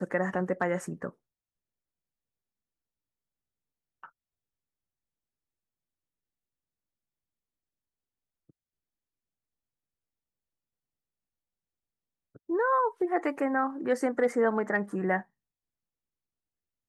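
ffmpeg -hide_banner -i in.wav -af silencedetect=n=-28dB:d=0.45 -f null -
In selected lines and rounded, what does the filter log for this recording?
silence_start: 1.07
silence_end: 12.50 | silence_duration: 11.43
silence_start: 15.19
silence_end: 16.88 | silence_duration: 1.70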